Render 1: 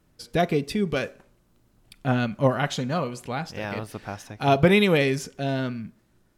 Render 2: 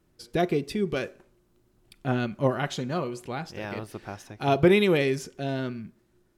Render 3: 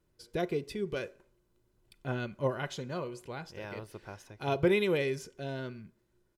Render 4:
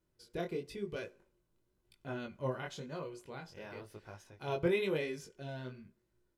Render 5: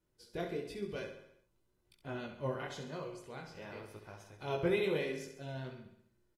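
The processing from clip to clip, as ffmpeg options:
-af "equalizer=f=360:w=6.6:g=10.5,volume=0.631"
-af "aecho=1:1:2:0.34,volume=0.422"
-af "flanger=delay=18.5:depth=5.4:speed=0.98,volume=0.75"
-filter_complex "[0:a]asplit=2[s0][s1];[s1]aecho=0:1:67|134|201|268|335|402:0.376|0.203|0.11|0.0592|0.032|0.0173[s2];[s0][s2]amix=inputs=2:normalize=0,volume=0.891" -ar 48000 -c:a aac -b:a 48k

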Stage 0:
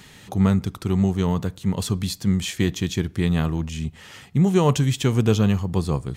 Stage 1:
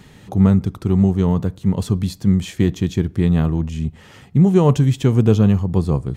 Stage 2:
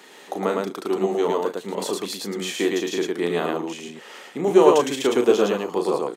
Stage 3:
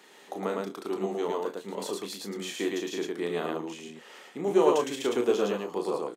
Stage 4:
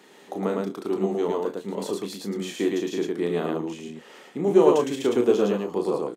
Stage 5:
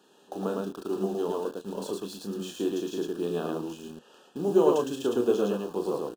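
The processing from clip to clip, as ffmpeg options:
-af "tiltshelf=f=1100:g=5.5"
-af "highpass=f=360:w=0.5412,highpass=f=360:w=1.3066,aecho=1:1:34.99|110.8:0.501|0.794,volume=1.33"
-filter_complex "[0:a]asplit=2[s0][s1];[s1]adelay=25,volume=0.282[s2];[s0][s2]amix=inputs=2:normalize=0,volume=0.398"
-af "lowshelf=f=410:g=10.5"
-filter_complex "[0:a]asplit=2[s0][s1];[s1]acrusher=bits=5:mix=0:aa=0.000001,volume=0.501[s2];[s0][s2]amix=inputs=2:normalize=0,asuperstop=centerf=2100:order=8:qfactor=2.6,volume=0.398"

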